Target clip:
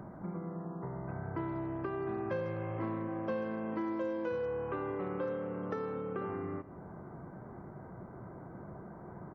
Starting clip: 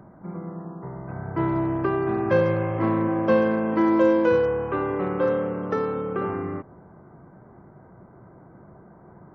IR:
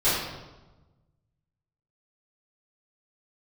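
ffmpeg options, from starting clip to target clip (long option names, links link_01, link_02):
-af "acompressor=threshold=-40dB:ratio=3,aecho=1:1:156:0.133,volume=1dB"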